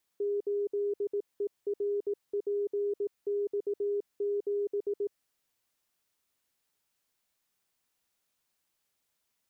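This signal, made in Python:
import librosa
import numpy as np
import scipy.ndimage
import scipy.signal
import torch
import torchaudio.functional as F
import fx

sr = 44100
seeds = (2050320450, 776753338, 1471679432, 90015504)

y = fx.morse(sr, text='8ERPX7', wpm=18, hz=407.0, level_db=-27.5)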